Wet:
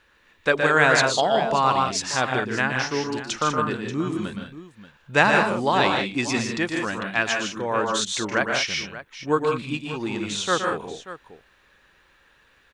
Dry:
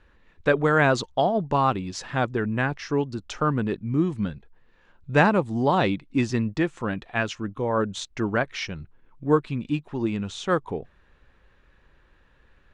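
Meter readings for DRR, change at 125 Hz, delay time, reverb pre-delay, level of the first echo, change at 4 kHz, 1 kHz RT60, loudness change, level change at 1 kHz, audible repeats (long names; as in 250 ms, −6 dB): no reverb audible, −4.5 dB, 118 ms, no reverb audible, −7.0 dB, +9.5 dB, no reverb audible, +2.5 dB, +3.5 dB, 4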